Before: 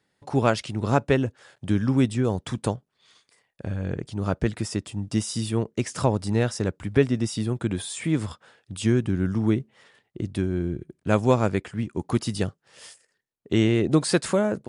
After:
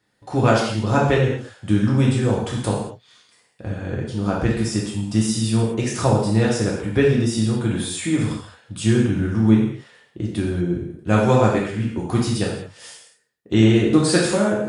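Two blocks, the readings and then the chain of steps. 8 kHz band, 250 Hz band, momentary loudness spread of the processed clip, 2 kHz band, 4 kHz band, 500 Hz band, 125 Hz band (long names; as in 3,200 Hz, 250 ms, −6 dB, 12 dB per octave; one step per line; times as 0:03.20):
+5.5 dB, +5.5 dB, 11 LU, +6.0 dB, +6.0 dB, +4.5 dB, +5.5 dB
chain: reverb whose tail is shaped and stops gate 260 ms falling, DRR −4 dB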